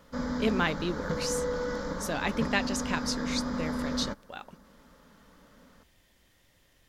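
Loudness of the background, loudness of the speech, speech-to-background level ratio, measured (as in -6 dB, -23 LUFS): -33.5 LUFS, -32.5 LUFS, 1.0 dB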